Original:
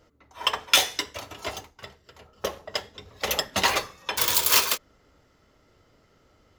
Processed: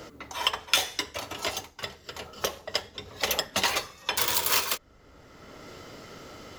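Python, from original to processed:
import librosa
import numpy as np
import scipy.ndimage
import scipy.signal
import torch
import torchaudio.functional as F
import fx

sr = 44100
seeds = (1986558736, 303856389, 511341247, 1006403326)

y = fx.band_squash(x, sr, depth_pct=70)
y = y * 10.0 ** (-1.5 / 20.0)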